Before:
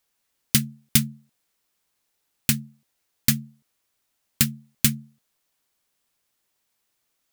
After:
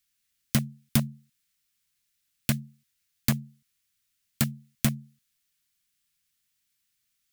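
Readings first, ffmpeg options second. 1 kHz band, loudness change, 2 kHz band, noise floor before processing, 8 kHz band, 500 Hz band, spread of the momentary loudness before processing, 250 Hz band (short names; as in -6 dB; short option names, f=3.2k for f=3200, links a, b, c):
+2.5 dB, -6.5 dB, -5.5 dB, -75 dBFS, -9.5 dB, +4.5 dB, 7 LU, -2.0 dB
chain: -filter_complex "[0:a]acrossover=split=240|1400[a][b][c];[b]acrusher=bits=4:mix=0:aa=0.000001[d];[c]acompressor=threshold=-26dB:ratio=6[e];[a][d][e]amix=inputs=3:normalize=0,volume=-1dB"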